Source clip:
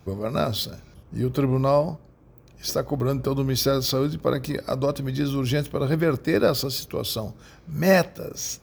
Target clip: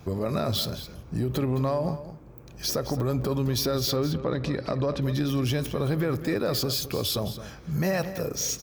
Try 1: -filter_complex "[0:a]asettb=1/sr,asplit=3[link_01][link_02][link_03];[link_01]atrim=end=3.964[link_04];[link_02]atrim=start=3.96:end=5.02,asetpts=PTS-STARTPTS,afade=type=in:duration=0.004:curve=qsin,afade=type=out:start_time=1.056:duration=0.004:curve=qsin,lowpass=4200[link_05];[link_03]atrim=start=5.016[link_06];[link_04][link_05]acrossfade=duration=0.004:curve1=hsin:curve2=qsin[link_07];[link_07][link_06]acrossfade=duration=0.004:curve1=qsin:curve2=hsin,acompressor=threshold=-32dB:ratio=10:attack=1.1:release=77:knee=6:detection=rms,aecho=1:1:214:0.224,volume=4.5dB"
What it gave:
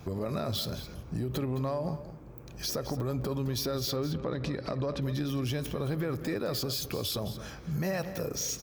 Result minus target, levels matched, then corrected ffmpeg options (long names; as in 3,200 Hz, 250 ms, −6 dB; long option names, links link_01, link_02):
downward compressor: peak gain reduction +6 dB
-filter_complex "[0:a]asettb=1/sr,asplit=3[link_01][link_02][link_03];[link_01]atrim=end=3.964[link_04];[link_02]atrim=start=3.96:end=5.02,asetpts=PTS-STARTPTS,afade=type=in:duration=0.004:curve=qsin,afade=type=out:start_time=1.056:duration=0.004:curve=qsin,lowpass=4200[link_05];[link_03]atrim=start=5.016[link_06];[link_04][link_05]acrossfade=duration=0.004:curve1=hsin:curve2=qsin[link_07];[link_07][link_06]acrossfade=duration=0.004:curve1=qsin:curve2=hsin,acompressor=threshold=-25.5dB:ratio=10:attack=1.1:release=77:knee=6:detection=rms,aecho=1:1:214:0.224,volume=4.5dB"